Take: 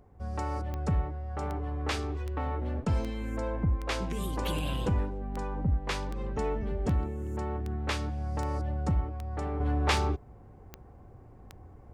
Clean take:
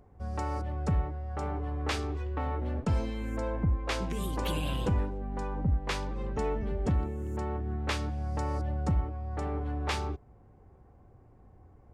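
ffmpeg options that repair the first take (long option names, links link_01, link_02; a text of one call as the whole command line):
ffmpeg -i in.wav -af "adeclick=threshold=4,asetnsamples=nb_out_samples=441:pad=0,asendcmd='9.6 volume volume -5.5dB',volume=0dB" out.wav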